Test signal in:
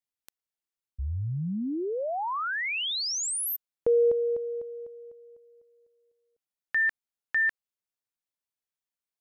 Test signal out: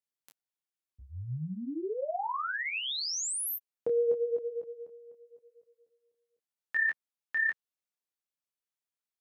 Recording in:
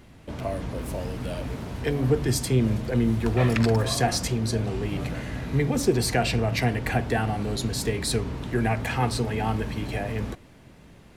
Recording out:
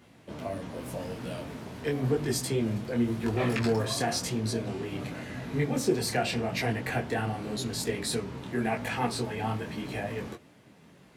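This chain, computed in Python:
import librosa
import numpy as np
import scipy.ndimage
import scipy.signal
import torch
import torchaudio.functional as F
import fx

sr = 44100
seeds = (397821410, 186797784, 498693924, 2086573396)

y = scipy.signal.sosfilt(scipy.signal.butter(2, 130.0, 'highpass', fs=sr, output='sos'), x)
y = fx.detune_double(y, sr, cents=31)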